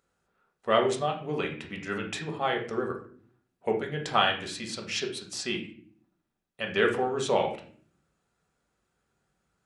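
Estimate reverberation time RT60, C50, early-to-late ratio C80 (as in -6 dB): no single decay rate, 8.0 dB, 13.0 dB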